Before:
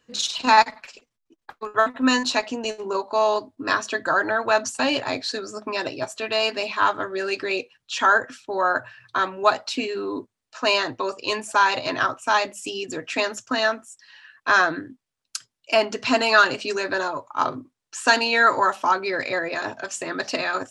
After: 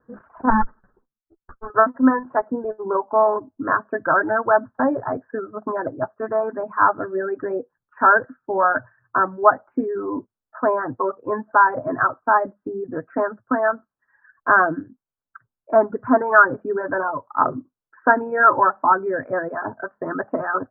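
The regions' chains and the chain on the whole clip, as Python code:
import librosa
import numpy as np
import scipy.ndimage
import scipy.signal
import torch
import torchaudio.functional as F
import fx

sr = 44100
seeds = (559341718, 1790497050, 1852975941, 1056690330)

y = fx.chain(x, sr, fx.lower_of_two(delay_ms=0.68),
    fx.lowpass(hz=1600.0, slope=6),
    fx.ensemble(), at=(0.5, 1.7))
y = fx.dereverb_blind(y, sr, rt60_s=1.2)
y = scipy.signal.sosfilt(scipy.signal.butter(12, 1600.0, 'lowpass', fs=sr, output='sos'), y)
y = fx.dynamic_eq(y, sr, hz=180.0, q=1.9, threshold_db=-45.0, ratio=4.0, max_db=3)
y = y * librosa.db_to_amplitude(4.5)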